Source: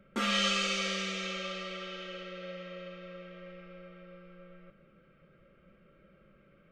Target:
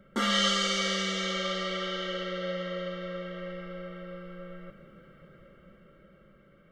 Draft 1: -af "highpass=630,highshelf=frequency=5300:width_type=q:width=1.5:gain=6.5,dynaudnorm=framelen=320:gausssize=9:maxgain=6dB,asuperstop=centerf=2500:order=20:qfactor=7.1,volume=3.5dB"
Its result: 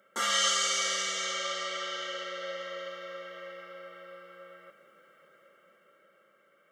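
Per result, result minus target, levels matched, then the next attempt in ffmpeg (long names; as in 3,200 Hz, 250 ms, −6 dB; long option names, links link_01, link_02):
8,000 Hz band +7.0 dB; 500 Hz band −5.0 dB
-af "highpass=630,dynaudnorm=framelen=320:gausssize=9:maxgain=6dB,asuperstop=centerf=2500:order=20:qfactor=7.1,volume=3.5dB"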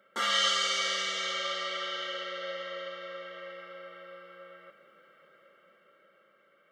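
500 Hz band −4.5 dB
-af "dynaudnorm=framelen=320:gausssize=9:maxgain=6dB,asuperstop=centerf=2500:order=20:qfactor=7.1,volume=3.5dB"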